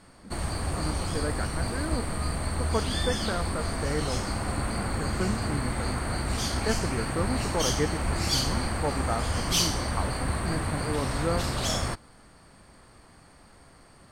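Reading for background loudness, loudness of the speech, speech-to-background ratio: -29.5 LUFS, -34.5 LUFS, -5.0 dB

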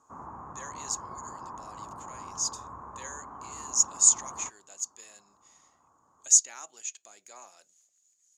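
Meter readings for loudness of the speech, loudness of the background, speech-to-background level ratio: -25.5 LUFS, -43.5 LUFS, 18.0 dB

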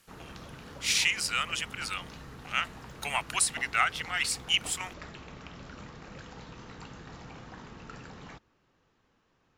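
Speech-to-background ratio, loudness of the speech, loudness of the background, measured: 17.5 dB, -29.0 LUFS, -46.5 LUFS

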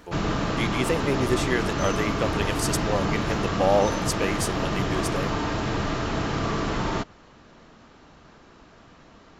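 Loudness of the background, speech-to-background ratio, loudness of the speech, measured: -27.0 LUFS, -1.0 dB, -28.0 LUFS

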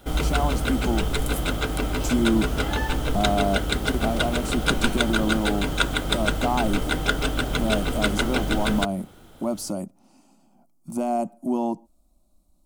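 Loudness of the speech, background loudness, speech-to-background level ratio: -27.5 LUFS, -25.5 LUFS, -2.0 dB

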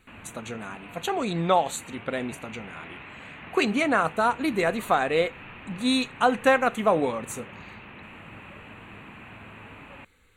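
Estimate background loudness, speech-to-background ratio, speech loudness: -43.0 LUFS, 17.5 dB, -25.5 LUFS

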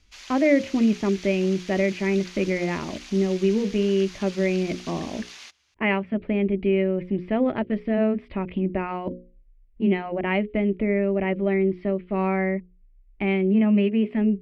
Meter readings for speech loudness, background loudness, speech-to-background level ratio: -24.0 LUFS, -41.0 LUFS, 17.0 dB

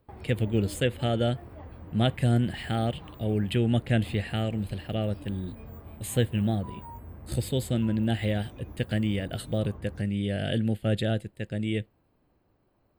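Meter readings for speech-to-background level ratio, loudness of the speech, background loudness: 16.5 dB, -29.0 LUFS, -45.5 LUFS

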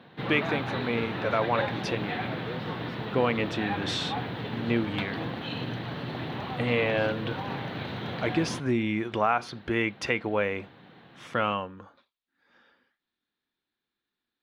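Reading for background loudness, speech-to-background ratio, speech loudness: -34.0 LUFS, 4.5 dB, -29.5 LUFS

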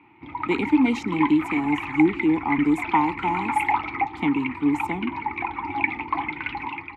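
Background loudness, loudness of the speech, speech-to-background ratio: -28.5 LUFS, -23.5 LUFS, 5.0 dB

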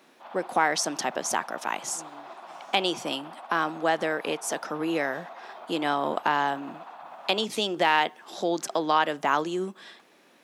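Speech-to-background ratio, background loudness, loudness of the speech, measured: 16.5 dB, -44.0 LUFS, -27.5 LUFS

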